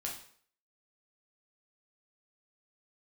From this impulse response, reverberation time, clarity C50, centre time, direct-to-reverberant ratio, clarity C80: 0.55 s, 6.0 dB, 29 ms, −2.0 dB, 10.5 dB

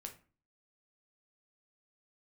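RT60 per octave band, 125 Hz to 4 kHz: 0.55, 0.50, 0.40, 0.40, 0.35, 0.25 seconds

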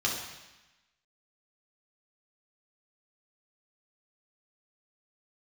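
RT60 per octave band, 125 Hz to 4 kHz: 1.1, 1.1, 0.95, 1.1, 1.2, 1.1 seconds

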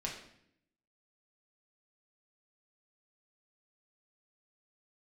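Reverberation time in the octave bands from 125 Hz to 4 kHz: 1.0, 0.95, 0.75, 0.65, 0.70, 0.60 seconds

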